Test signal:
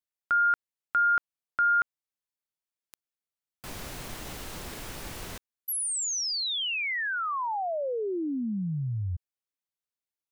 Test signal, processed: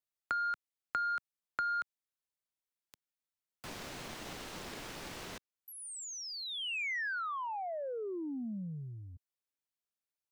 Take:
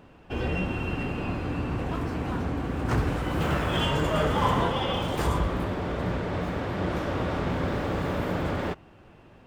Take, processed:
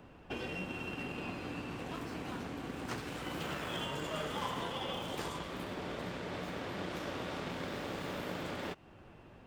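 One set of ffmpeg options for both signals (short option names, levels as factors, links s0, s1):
-filter_complex "[0:a]acrossover=split=2400|7100[s0][s1][s2];[s0]acompressor=threshold=0.0158:ratio=4[s3];[s1]acompressor=threshold=0.00631:ratio=4[s4];[s2]acompressor=threshold=0.00141:ratio=4[s5];[s3][s4][s5]amix=inputs=3:normalize=0,aeval=exprs='0.1*(cos(1*acos(clip(val(0)/0.1,-1,1)))-cos(1*PI/2))+0.00447*(cos(7*acos(clip(val(0)/0.1,-1,1)))-cos(7*PI/2))':c=same,acrossover=split=140|880[s6][s7][s8];[s6]acompressor=threshold=0.00178:ratio=6:release=220[s9];[s9][s7][s8]amix=inputs=3:normalize=0"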